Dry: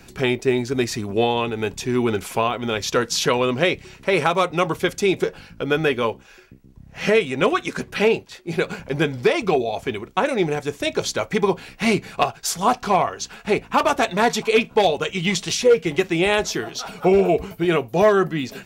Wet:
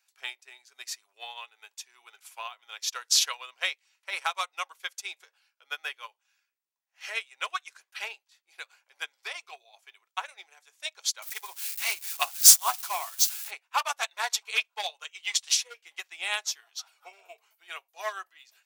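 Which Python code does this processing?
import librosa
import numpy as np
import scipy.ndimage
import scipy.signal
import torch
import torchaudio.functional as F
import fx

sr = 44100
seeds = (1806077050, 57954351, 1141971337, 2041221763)

y = fx.crossing_spikes(x, sr, level_db=-20.0, at=(11.22, 13.51))
y = scipy.signal.sosfilt(scipy.signal.butter(4, 810.0, 'highpass', fs=sr, output='sos'), y)
y = fx.high_shelf(y, sr, hz=2700.0, db=10.5)
y = fx.upward_expand(y, sr, threshold_db=-29.0, expansion=2.5)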